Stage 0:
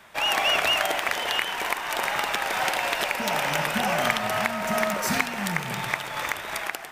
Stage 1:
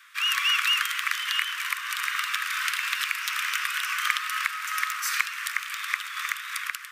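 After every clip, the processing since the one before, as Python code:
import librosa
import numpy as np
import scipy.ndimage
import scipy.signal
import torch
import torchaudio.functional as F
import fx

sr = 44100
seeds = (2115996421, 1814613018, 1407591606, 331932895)

y = scipy.signal.sosfilt(scipy.signal.butter(16, 1100.0, 'highpass', fs=sr, output='sos'), x)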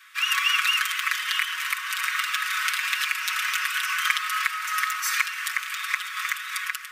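y = x + 0.78 * np.pad(x, (int(5.4 * sr / 1000.0), 0))[:len(x)]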